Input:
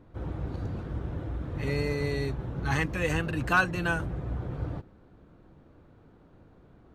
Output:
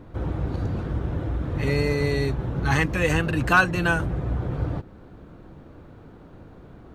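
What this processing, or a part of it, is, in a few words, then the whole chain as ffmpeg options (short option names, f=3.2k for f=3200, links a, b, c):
parallel compression: -filter_complex "[0:a]asplit=2[a][b];[b]acompressor=threshold=-41dB:ratio=6,volume=-1.5dB[c];[a][c]amix=inputs=2:normalize=0,volume=5dB"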